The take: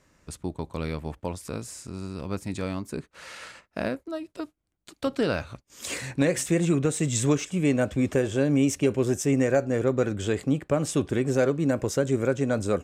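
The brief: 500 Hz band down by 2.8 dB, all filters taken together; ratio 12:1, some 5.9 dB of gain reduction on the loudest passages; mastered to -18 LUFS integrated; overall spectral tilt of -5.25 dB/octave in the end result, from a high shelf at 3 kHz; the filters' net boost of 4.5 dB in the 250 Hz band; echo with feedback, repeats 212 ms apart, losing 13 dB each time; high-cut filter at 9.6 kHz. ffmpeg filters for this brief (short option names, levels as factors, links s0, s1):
-af "lowpass=9600,equalizer=f=250:t=o:g=7,equalizer=f=500:t=o:g=-6,highshelf=f=3000:g=4.5,acompressor=threshold=0.1:ratio=12,aecho=1:1:212|424|636:0.224|0.0493|0.0108,volume=2.99"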